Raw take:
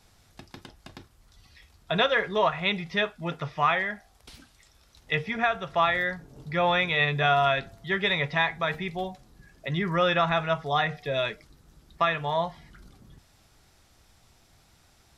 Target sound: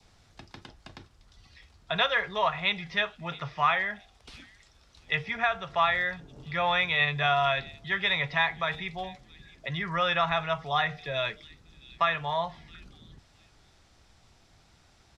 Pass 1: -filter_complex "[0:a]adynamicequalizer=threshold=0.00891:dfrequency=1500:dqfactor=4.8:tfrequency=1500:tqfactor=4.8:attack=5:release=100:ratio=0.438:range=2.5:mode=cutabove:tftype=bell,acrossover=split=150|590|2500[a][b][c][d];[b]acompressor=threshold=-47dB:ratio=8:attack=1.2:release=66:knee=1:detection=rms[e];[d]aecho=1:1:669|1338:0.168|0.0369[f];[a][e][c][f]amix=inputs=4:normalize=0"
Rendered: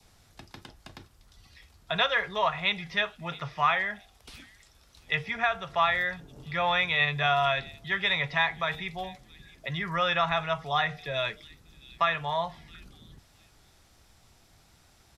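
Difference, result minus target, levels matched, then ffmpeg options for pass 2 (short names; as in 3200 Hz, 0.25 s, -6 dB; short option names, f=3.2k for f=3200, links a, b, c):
8000 Hz band +2.5 dB
-filter_complex "[0:a]adynamicequalizer=threshold=0.00891:dfrequency=1500:dqfactor=4.8:tfrequency=1500:tqfactor=4.8:attack=5:release=100:ratio=0.438:range=2.5:mode=cutabove:tftype=bell,lowpass=6.7k,acrossover=split=150|590|2500[a][b][c][d];[b]acompressor=threshold=-47dB:ratio=8:attack=1.2:release=66:knee=1:detection=rms[e];[d]aecho=1:1:669|1338:0.168|0.0369[f];[a][e][c][f]amix=inputs=4:normalize=0"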